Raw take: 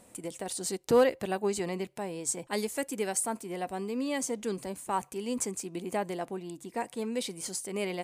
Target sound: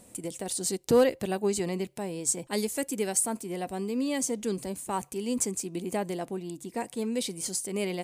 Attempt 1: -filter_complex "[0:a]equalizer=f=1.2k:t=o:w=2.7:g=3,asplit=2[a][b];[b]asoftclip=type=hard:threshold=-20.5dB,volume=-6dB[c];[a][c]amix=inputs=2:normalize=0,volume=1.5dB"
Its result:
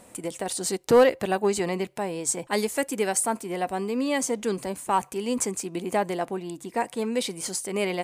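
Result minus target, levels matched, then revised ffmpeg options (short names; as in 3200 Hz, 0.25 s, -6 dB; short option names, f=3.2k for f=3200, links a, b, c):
1000 Hz band +5.0 dB
-filter_complex "[0:a]equalizer=f=1.2k:t=o:w=2.7:g=-7,asplit=2[a][b];[b]asoftclip=type=hard:threshold=-20.5dB,volume=-6dB[c];[a][c]amix=inputs=2:normalize=0,volume=1.5dB"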